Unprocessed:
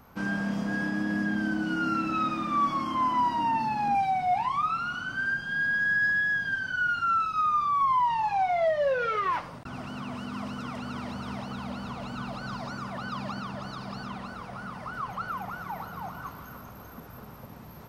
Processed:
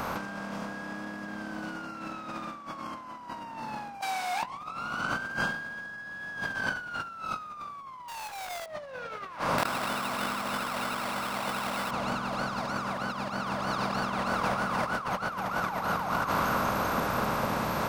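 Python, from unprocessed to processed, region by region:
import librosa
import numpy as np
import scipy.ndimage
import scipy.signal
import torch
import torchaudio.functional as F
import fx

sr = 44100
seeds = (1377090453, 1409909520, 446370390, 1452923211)

y = fx.chain(x, sr, fx.highpass(hz=230.0, slope=12),
    fx.differentiator(), at=(4.01, 4.43))
y = fx.chain(y, sr, fx.highpass(hz=45.0, slope=12),
    fx.schmitt(flips_db=-45.5),
    fx.peak_eq(hz=210.0, db=-14.0, octaves=1.7), at=(8.08, 8.66))
y = fx.chain(y, sr, fx.tilt_eq(slope=3.5),
    fx.sample_hold(seeds[0], rate_hz=6500.0, jitter_pct=0),
    fx.env_flatten(amount_pct=50), at=(9.58, 11.91))
y = fx.bin_compress(y, sr, power=0.6)
y = fx.over_compress(y, sr, threshold_db=-31.0, ratio=-0.5)
y = y * 10.0 ** (-1.0 / 20.0)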